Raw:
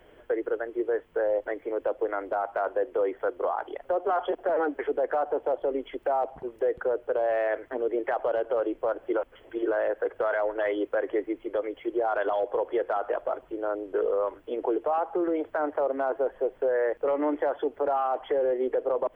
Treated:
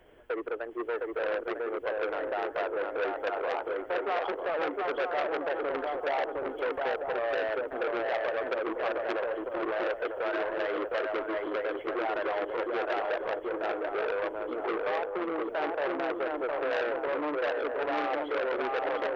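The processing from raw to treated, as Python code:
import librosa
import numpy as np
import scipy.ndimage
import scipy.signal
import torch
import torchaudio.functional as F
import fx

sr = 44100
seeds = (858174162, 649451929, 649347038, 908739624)

p1 = fx.moving_average(x, sr, points=21, at=(14.89, 15.42))
p2 = p1 + fx.echo_swing(p1, sr, ms=948, ratio=3, feedback_pct=37, wet_db=-3.0, dry=0)
p3 = fx.transformer_sat(p2, sr, knee_hz=1800.0)
y = p3 * librosa.db_to_amplitude(-3.0)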